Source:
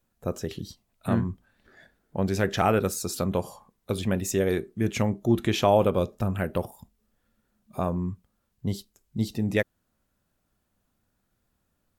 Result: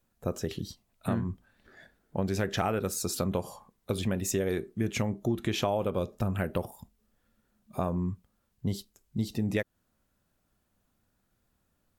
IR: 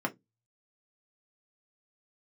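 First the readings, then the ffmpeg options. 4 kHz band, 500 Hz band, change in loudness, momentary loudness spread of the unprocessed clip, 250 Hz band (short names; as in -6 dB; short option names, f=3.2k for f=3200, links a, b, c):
-2.5 dB, -6.0 dB, -5.0 dB, 15 LU, -4.0 dB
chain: -af "acompressor=threshold=-25dB:ratio=6"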